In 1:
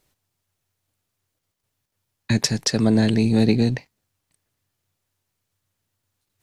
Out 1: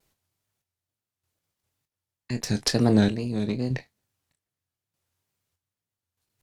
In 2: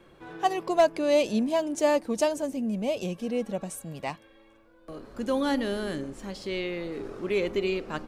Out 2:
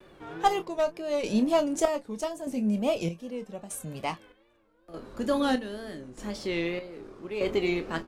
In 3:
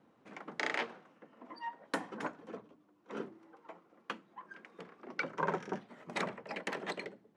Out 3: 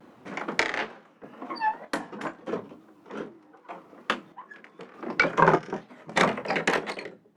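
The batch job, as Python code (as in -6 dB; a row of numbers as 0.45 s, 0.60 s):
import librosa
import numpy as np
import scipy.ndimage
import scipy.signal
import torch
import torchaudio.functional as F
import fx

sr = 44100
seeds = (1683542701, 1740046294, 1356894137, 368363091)

p1 = fx.wow_flutter(x, sr, seeds[0], rate_hz=2.1, depth_cents=120.0)
p2 = fx.cheby_harmonics(p1, sr, harmonics=(4,), levels_db=(-18,), full_scale_db=-4.5)
p3 = fx.chopper(p2, sr, hz=0.81, depth_pct=65, duty_pct=50)
p4 = p3 + fx.room_early_taps(p3, sr, ms=(24, 37), db=(-10.5, -17.5), dry=0)
y = p4 * 10.0 ** (-30 / 20.0) / np.sqrt(np.mean(np.square(p4)))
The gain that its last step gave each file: -3.5 dB, +1.5 dB, +14.5 dB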